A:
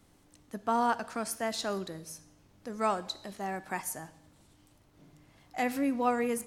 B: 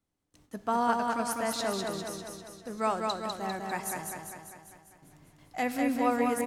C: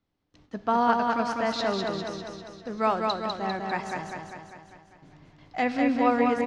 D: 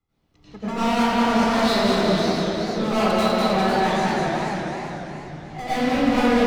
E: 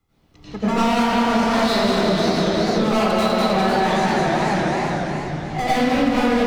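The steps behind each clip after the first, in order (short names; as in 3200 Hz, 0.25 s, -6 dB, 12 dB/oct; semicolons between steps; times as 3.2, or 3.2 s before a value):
gate with hold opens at -49 dBFS; on a send: feedback echo 0.199 s, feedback 58%, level -3.5 dB
LPF 5000 Hz 24 dB/oct; gain +4.5 dB
overloaded stage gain 29.5 dB; reverb RT60 1.4 s, pre-delay 87 ms, DRR -13.5 dB; warbling echo 0.491 s, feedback 34%, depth 217 cents, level -7 dB; gain -8.5 dB
compressor, threshold -24 dBFS, peak gain reduction 10 dB; gain +9 dB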